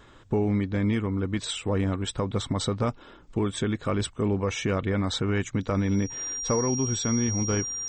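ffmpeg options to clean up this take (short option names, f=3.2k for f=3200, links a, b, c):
-af "bandreject=f=5.7k:w=30"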